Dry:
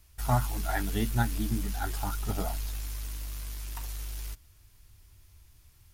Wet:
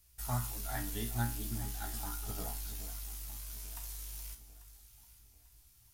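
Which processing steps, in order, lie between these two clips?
high-shelf EQ 4,200 Hz +11 dB
tuned comb filter 59 Hz, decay 0.38 s, harmonics all, mix 80%
delay that swaps between a low-pass and a high-pass 421 ms, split 1,100 Hz, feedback 63%, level −11 dB
level −4 dB

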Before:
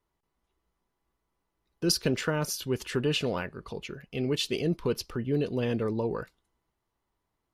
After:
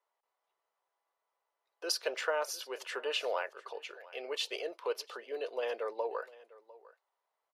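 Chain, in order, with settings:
Butterworth high-pass 530 Hz 36 dB per octave
spectral tilt −2.5 dB per octave
single-tap delay 701 ms −20.5 dB

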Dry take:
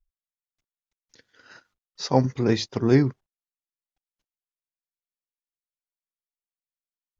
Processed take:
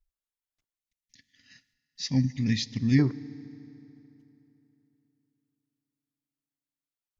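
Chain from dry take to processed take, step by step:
gain on a spectral selection 0:00.76–0:02.99, 300–1,700 Hz −23 dB
feedback delay network reverb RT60 3.3 s, high-frequency decay 0.75×, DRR 18 dB
level −1.5 dB

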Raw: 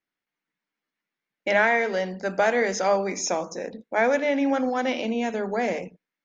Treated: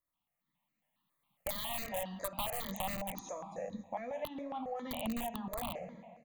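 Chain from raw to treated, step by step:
fade-out on the ending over 1.23 s
camcorder AGC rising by 7.7 dB per second
0:01.49–0:02.62: tilt shelving filter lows −6 dB, about 640 Hz
brickwall limiter −16 dBFS, peak gain reduction 9.5 dB
0:03.20–0:04.91: tuned comb filter 99 Hz, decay 0.17 s, harmonics all, mix 80%
repeating echo 136 ms, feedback 58%, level −21 dB
convolution reverb RT60 1.2 s, pre-delay 64 ms, DRR 16.5 dB
wrap-around overflow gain 18.5 dB
parametric band 2,200 Hz −13 dB 0.69 octaves
phaser with its sweep stopped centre 1,500 Hz, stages 6
downward compressor 4 to 1, threshold −40 dBFS, peak gain reduction 11.5 dB
step-sequenced phaser 7.3 Hz 800–3,300 Hz
level +6 dB

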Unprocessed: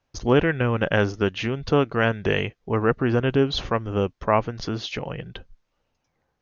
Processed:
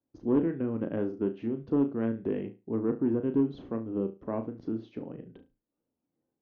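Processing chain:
resonant band-pass 280 Hz, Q 2.9
flutter between parallel walls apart 6.1 metres, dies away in 0.26 s
soft clipping −15.5 dBFS, distortion −20 dB

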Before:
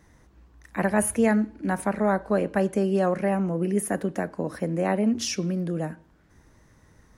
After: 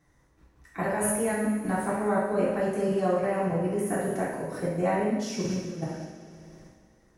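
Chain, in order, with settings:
echo machine with several playback heads 62 ms, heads first and third, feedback 72%, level −16 dB
output level in coarse steps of 13 dB
coupled-rooms reverb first 0.88 s, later 3.1 s, DRR −7.5 dB
level −6 dB

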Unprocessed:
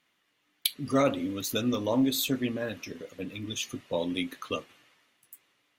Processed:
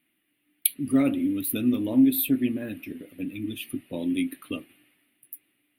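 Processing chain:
drawn EQ curve 160 Hz 0 dB, 310 Hz +9 dB, 470 Hz −8 dB, 700 Hz −5 dB, 1,000 Hz −13 dB, 2,500 Hz +1 dB, 4,500 Hz −12 dB, 6,600 Hz −29 dB, 9,500 Hz +9 dB

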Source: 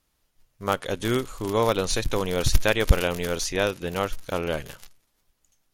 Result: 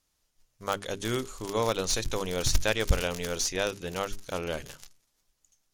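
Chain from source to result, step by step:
stylus tracing distortion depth 0.049 ms
parametric band 6,300 Hz +7.5 dB 1.2 octaves
mains-hum notches 50/100/150/200/250/300/350/400 Hz
level −5.5 dB

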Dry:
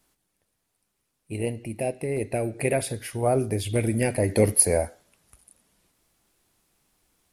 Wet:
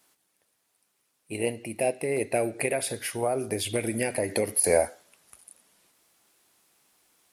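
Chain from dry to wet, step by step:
high-pass filter 480 Hz 6 dB per octave
0:02.55–0:04.64: downward compressor 5 to 1, threshold −28 dBFS, peak gain reduction 14.5 dB
level +4.5 dB

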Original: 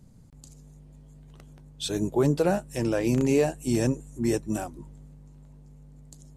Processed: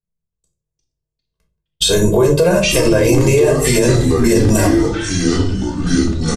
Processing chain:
mains-hum notches 60/120/180/240 Hz
noise gate −42 dBFS, range −57 dB
high-shelf EQ 10,000 Hz +6 dB
comb filter 1.9 ms, depth 98%
downward compressor 4 to 1, threshold −30 dBFS, peak gain reduction 13.5 dB
rectangular room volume 230 cubic metres, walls furnished, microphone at 1.7 metres
delay with pitch and tempo change per echo 204 ms, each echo −5 semitones, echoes 3, each echo −6 dB
boost into a limiter +21.5 dB
level −2.5 dB

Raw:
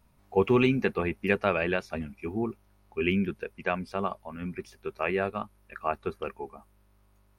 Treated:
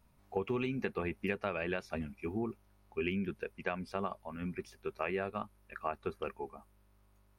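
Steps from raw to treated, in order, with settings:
downward compressor 10 to 1, threshold −27 dBFS, peak gain reduction 10.5 dB
level −3.5 dB

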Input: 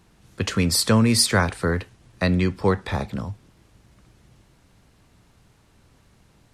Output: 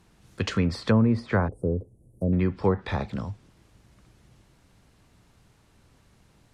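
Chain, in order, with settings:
treble cut that deepens with the level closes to 910 Hz, closed at −14 dBFS
0:01.48–0:02.33: elliptic band-stop filter 530–9,900 Hz, stop band 70 dB
level −2.5 dB

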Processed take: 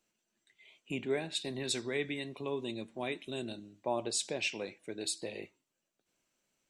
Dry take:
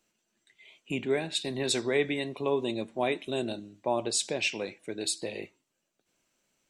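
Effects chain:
0:01.58–0:03.77: dynamic equaliser 670 Hz, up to −6 dB, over −41 dBFS, Q 0.78
level −5 dB

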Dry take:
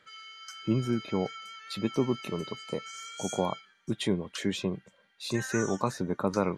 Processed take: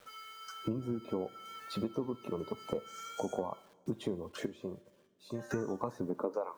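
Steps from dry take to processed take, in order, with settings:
spectral magnitudes quantised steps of 15 dB
octave-band graphic EQ 125/250/500/1,000/2,000/4,000/8,000 Hz −4/+4/+7/+7/−8/−5/−5 dB
high-pass filter sweep 86 Hz → 1,200 Hz, 0:06.02–0:06.53
dynamic equaliser 8,700 Hz, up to −3 dB, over −54 dBFS, Q 0.96
bit-depth reduction 10 bits, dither none
0:04.46–0:05.51: tuned comb filter 590 Hz, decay 0.46 s, mix 80%
downward compressor 6 to 1, threshold −34 dBFS, peak gain reduction 19.5 dB
coupled-rooms reverb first 0.41 s, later 2.7 s, from −16 dB, DRR 15.5 dB
level +1 dB

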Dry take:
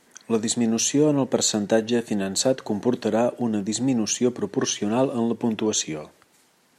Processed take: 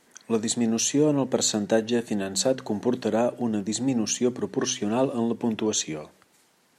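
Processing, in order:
hum removal 63.73 Hz, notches 4
level −2 dB

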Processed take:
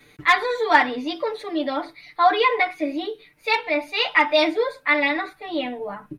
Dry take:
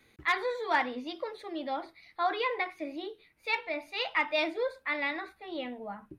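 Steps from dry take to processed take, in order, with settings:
comb filter 6.8 ms, depth 100%
level +8 dB

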